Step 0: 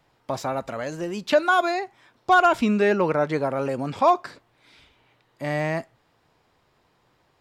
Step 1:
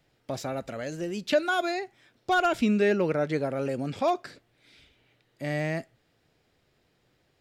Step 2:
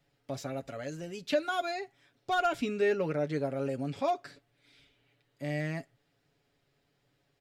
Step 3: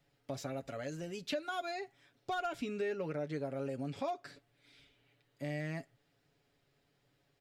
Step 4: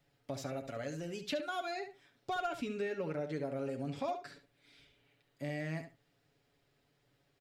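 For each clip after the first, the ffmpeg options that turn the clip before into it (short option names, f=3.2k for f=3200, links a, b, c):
-af "equalizer=f=1k:t=o:w=0.74:g=-12.5,volume=-2dB"
-af "aecho=1:1:7.1:0.59,volume=-6.5dB"
-af "acompressor=threshold=-36dB:ratio=2.5,volume=-1dB"
-filter_complex "[0:a]asplit=2[a][b];[b]adelay=70,lowpass=f=4.6k:p=1,volume=-9dB,asplit=2[c][d];[d]adelay=70,lowpass=f=4.6k:p=1,volume=0.16[e];[a][c][e]amix=inputs=3:normalize=0"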